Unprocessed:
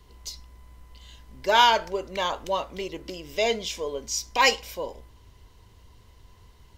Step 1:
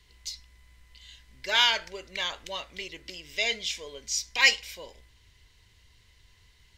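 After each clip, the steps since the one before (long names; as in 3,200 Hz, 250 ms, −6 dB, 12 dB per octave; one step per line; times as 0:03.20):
octave-band graphic EQ 250/500/1,000/2,000/4,000/8,000 Hz −4/−3/−6/+11/+7/+6 dB
level −8 dB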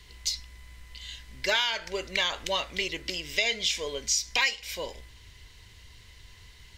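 downward compressor 12 to 1, threshold −31 dBFS, peak gain reduction 17 dB
level +8.5 dB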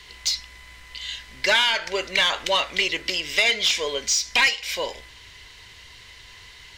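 mid-hump overdrive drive 13 dB, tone 4,400 Hz, clips at −11.5 dBFS
level +3 dB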